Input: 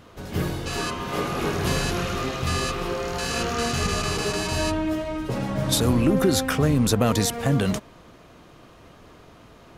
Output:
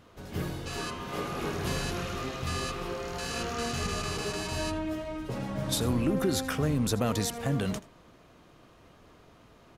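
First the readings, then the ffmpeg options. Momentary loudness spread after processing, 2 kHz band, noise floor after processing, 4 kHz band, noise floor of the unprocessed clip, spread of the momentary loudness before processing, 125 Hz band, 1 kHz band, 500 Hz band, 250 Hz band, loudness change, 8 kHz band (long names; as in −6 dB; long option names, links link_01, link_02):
8 LU, −7.5 dB, −57 dBFS, −7.5 dB, −50 dBFS, 8 LU, −7.5 dB, −7.5 dB, −7.5 dB, −7.5 dB, −7.5 dB, −7.5 dB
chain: -af "aecho=1:1:81:0.112,volume=-7.5dB"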